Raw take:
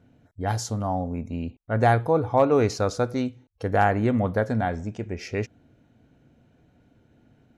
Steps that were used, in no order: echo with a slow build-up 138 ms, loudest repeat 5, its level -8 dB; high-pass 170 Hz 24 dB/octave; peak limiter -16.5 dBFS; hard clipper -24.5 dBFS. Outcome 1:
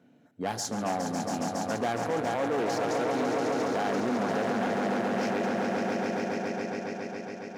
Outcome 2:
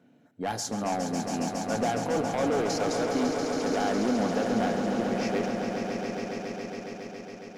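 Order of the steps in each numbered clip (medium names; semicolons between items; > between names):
echo with a slow build-up > peak limiter > hard clipper > high-pass; peak limiter > high-pass > hard clipper > echo with a slow build-up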